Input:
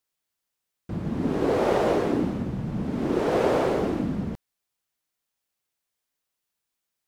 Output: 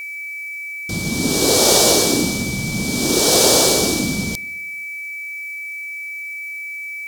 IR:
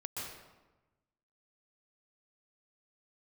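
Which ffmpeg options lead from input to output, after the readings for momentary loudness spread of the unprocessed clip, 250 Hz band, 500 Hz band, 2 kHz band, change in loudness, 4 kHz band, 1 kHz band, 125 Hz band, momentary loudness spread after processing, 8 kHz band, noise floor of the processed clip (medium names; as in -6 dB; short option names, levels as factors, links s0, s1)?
10 LU, +5.0 dB, +5.0 dB, +17.0 dB, +8.0 dB, +25.5 dB, +5.0 dB, +5.0 dB, 15 LU, +34.0 dB, -30 dBFS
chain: -filter_complex "[0:a]aexciter=amount=9.4:drive=10:freq=3600,aeval=exprs='val(0)+0.0251*sin(2*PI*2300*n/s)':c=same,asplit=2[s0][s1];[1:a]atrim=start_sample=2205,asetrate=42336,aresample=44100[s2];[s1][s2]afir=irnorm=-1:irlink=0,volume=0.0668[s3];[s0][s3]amix=inputs=2:normalize=0,volume=1.68"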